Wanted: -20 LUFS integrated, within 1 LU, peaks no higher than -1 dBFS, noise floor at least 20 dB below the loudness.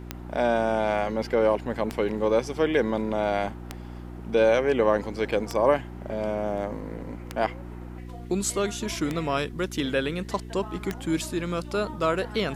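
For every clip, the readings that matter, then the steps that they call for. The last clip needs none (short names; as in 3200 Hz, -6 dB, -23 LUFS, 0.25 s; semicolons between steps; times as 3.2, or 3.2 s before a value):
clicks 7; hum 60 Hz; harmonics up to 360 Hz; hum level -37 dBFS; loudness -26.5 LUFS; peak -8.0 dBFS; loudness target -20.0 LUFS
-> de-click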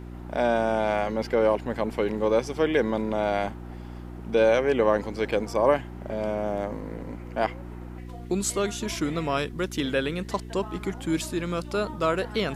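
clicks 0; hum 60 Hz; harmonics up to 360 Hz; hum level -37 dBFS
-> de-hum 60 Hz, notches 6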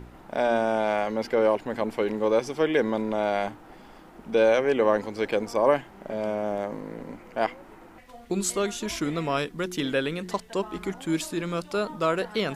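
hum none; loudness -26.5 LUFS; peak -8.5 dBFS; loudness target -20.0 LUFS
-> gain +6.5 dB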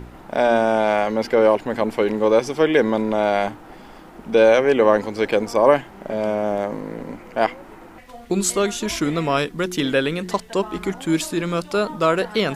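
loudness -20.0 LUFS; peak -2.0 dBFS; noise floor -42 dBFS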